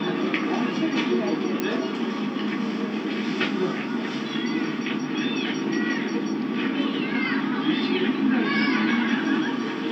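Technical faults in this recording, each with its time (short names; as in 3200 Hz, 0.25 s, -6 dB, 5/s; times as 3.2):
1.6 pop -11 dBFS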